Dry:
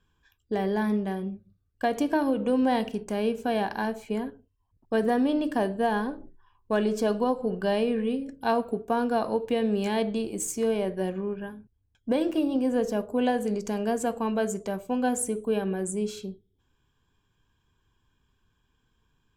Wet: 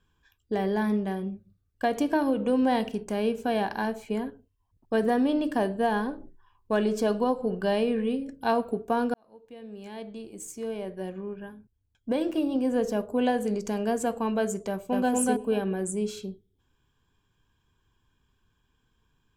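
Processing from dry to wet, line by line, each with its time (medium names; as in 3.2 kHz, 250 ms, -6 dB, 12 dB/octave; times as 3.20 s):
9.14–12.90 s: fade in
14.68–15.12 s: echo throw 240 ms, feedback 15%, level -1 dB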